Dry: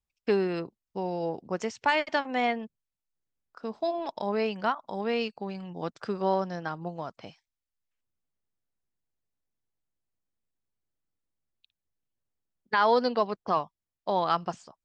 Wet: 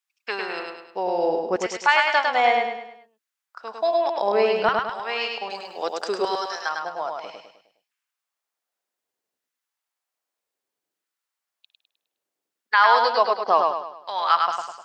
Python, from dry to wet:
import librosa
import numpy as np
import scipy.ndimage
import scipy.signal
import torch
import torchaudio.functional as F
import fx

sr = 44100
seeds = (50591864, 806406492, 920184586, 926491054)

y = fx.bass_treble(x, sr, bass_db=-14, treble_db=13, at=(5.5, 6.69))
y = fx.filter_lfo_highpass(y, sr, shape='saw_down', hz=0.64, low_hz=320.0, high_hz=1500.0, q=1.2)
y = fx.echo_feedback(y, sr, ms=103, feedback_pct=43, wet_db=-3.5)
y = y * librosa.db_to_amplitude(6.5)